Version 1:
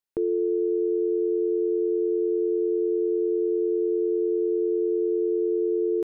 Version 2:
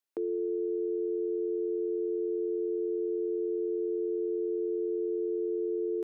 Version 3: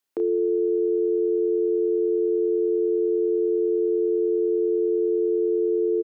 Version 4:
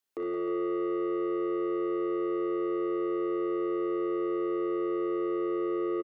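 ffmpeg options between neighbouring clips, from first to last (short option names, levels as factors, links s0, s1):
-af "highpass=f=220:w=0.5412,highpass=f=220:w=1.3066,alimiter=level_in=1.19:limit=0.0631:level=0:latency=1:release=52,volume=0.841"
-filter_complex "[0:a]acontrast=73,asplit=2[s0][s1];[s1]adelay=32,volume=0.447[s2];[s0][s2]amix=inputs=2:normalize=0"
-filter_complex "[0:a]asoftclip=type=tanh:threshold=0.0501,asplit=2[s0][s1];[s1]aecho=0:1:60|86|171|179|309|383:0.422|0.1|0.335|0.251|0.266|0.126[s2];[s0][s2]amix=inputs=2:normalize=0,volume=0.631"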